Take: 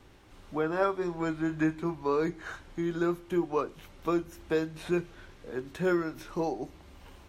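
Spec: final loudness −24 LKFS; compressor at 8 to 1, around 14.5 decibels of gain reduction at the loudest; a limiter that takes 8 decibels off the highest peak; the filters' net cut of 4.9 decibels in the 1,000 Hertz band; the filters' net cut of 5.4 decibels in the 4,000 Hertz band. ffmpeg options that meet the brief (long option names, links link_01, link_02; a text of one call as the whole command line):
ffmpeg -i in.wav -af "equalizer=frequency=1000:width_type=o:gain=-6,equalizer=frequency=4000:width_type=o:gain=-6.5,acompressor=threshold=-39dB:ratio=8,volume=22.5dB,alimiter=limit=-13dB:level=0:latency=1" out.wav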